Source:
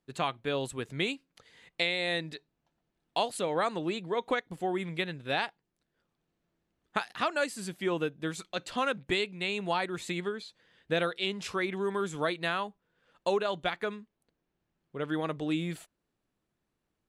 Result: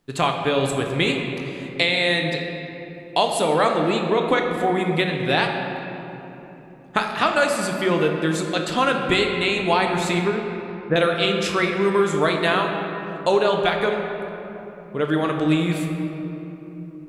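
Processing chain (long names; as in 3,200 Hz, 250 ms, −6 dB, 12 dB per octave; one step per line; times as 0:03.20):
0:10.19–0:10.96: low-pass filter 1,700 Hz 24 dB per octave
in parallel at −3 dB: downward compressor, threshold −41 dBFS, peak gain reduction 16 dB
on the sum: rectangular room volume 190 cubic metres, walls hard, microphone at 0.37 metres
level +8 dB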